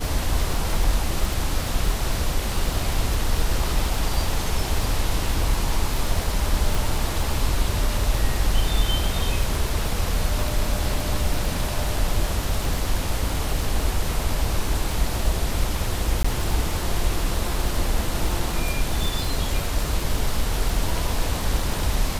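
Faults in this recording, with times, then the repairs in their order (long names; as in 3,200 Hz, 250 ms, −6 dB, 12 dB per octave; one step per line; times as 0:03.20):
surface crackle 56 per second −25 dBFS
0:06.75: click
0:16.23–0:16.25: drop-out 15 ms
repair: click removal
repair the gap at 0:16.23, 15 ms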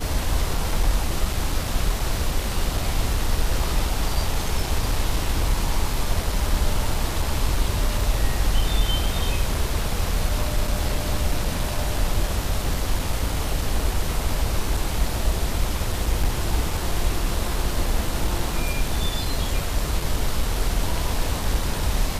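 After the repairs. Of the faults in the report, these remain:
none of them is left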